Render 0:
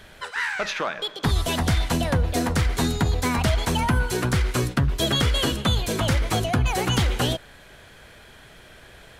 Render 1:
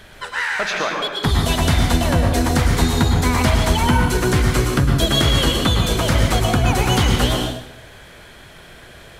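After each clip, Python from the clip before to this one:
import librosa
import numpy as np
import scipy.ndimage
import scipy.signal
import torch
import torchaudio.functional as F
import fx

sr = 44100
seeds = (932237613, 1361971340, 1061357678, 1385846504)

y = fx.rev_plate(x, sr, seeds[0], rt60_s=0.8, hf_ratio=0.9, predelay_ms=95, drr_db=1.5)
y = F.gain(torch.from_numpy(y), 3.5).numpy()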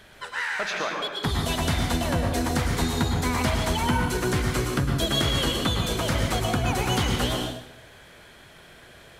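y = fx.low_shelf(x, sr, hz=67.0, db=-7.5)
y = F.gain(torch.from_numpy(y), -6.5).numpy()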